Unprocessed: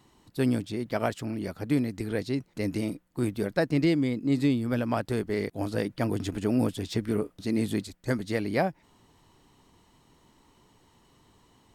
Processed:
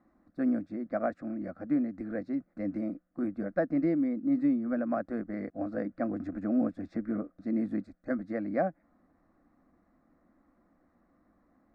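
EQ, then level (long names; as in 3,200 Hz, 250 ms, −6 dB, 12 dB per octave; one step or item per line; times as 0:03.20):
low-pass filter 1,300 Hz 12 dB per octave
low-shelf EQ 100 Hz −7.5 dB
phaser with its sweep stopped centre 620 Hz, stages 8
0.0 dB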